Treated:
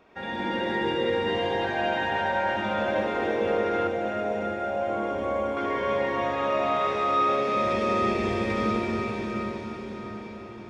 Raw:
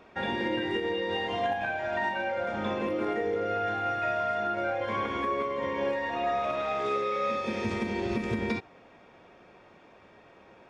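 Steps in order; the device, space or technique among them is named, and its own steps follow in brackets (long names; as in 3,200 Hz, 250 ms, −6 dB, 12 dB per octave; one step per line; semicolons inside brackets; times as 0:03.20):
cathedral (convolution reverb RT60 5.1 s, pre-delay 69 ms, DRR −6.5 dB)
0:03.87–0:05.57: flat-topped bell 2,400 Hz −9.5 dB 2.7 octaves
echo with a time of its own for lows and highs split 680 Hz, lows 100 ms, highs 332 ms, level −7 dB
feedback delay with all-pass diffusion 496 ms, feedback 54%, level −11 dB
level −4 dB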